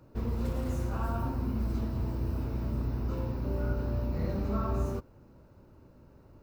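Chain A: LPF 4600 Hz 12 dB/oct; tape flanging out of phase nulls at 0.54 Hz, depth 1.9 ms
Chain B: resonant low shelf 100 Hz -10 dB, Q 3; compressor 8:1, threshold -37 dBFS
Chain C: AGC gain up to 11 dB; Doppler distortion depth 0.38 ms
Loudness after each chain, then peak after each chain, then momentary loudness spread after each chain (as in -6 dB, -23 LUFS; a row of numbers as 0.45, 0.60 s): -40.5, -41.5, -22.5 LUFS; -23.0, -29.5, -8.0 dBFS; 8, 15, 4 LU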